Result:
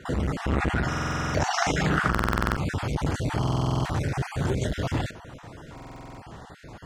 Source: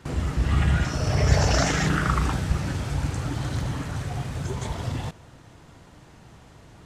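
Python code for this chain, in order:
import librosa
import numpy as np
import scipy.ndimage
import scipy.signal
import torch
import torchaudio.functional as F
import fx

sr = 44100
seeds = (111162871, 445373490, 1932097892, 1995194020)

y = fx.spec_dropout(x, sr, seeds[0], share_pct=25)
y = fx.low_shelf(y, sr, hz=320.0, db=-7.0)
y = fx.rider(y, sr, range_db=4, speed_s=2.0)
y = fx.high_shelf(y, sr, hz=2600.0, db=-10.0)
y = fx.quant_float(y, sr, bits=8)
y = fx.buffer_glitch(y, sr, at_s=(0.88, 2.1, 3.39, 5.73), block=2048, repeats=9)
y = fx.transformer_sat(y, sr, knee_hz=480.0)
y = F.gain(torch.from_numpy(y), 7.5).numpy()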